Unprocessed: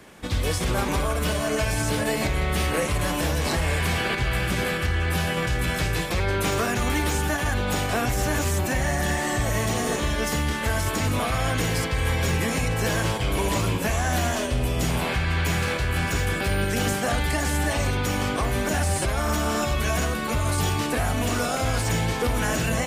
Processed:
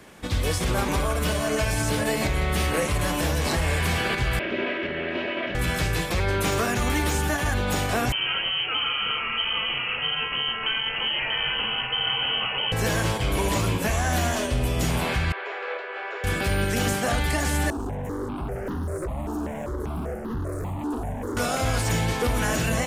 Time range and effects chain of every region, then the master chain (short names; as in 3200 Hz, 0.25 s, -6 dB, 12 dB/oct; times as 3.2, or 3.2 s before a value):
4.39–5.55 minimum comb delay 3.1 ms + speaker cabinet 220–3000 Hz, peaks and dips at 220 Hz +4 dB, 380 Hz +6 dB, 570 Hz +7 dB, 850 Hz -7 dB, 1200 Hz -7 dB, 2700 Hz +3 dB
8.12–12.72 inverted band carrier 3100 Hz + air absorption 200 m
15.32–16.24 Chebyshev band-pass 390–7500 Hz, order 5 + air absorption 480 m
17.7–21.37 EQ curve 100 Hz 0 dB, 370 Hz +11 dB, 2000 Hz -21 dB, 4100 Hz -23 dB, 6900 Hz -12 dB + hard clip -25 dBFS + step phaser 5.1 Hz 560–2300 Hz
whole clip: dry